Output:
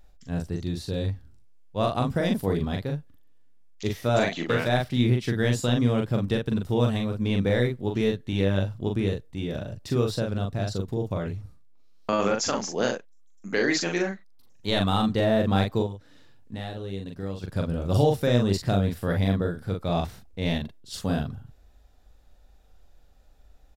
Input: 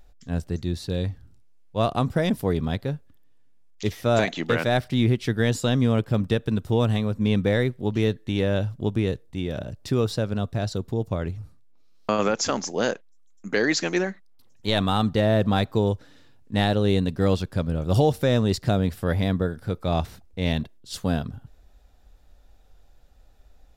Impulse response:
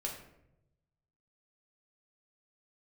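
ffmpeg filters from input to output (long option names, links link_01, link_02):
-filter_complex "[0:a]asettb=1/sr,asplit=3[link_01][link_02][link_03];[link_01]atrim=end=15.824[link_04];[link_02]atrim=start=15.82:end=17.44,asetpts=PTS-STARTPTS,afade=type=in:duration=0.004:curve=qsin,afade=type=out:start_time=1.616:duration=0.004:curve=qsin,acompressor=threshold=-31dB:ratio=5[link_05];[link_03]atrim=start=17.436[link_06];[link_04][link_05]acrossfade=duration=0.004:curve1=hsin:curve2=qsin[link_07];[link_07][link_06]acrossfade=duration=0.004:curve1=qsin:curve2=hsin,asplit=2[link_08][link_09];[link_09]adelay=41,volume=-3.5dB[link_10];[link_08][link_10]amix=inputs=2:normalize=0,volume=-3dB"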